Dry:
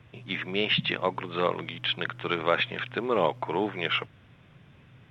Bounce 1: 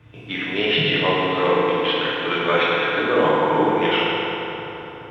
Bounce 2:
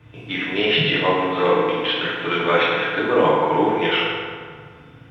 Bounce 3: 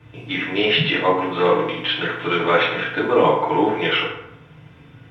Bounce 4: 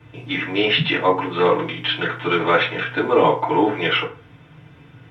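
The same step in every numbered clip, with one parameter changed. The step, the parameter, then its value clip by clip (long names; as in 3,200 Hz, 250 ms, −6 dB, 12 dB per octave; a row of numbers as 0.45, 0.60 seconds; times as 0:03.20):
feedback delay network reverb, RT60: 3.9, 1.9, 0.82, 0.37 seconds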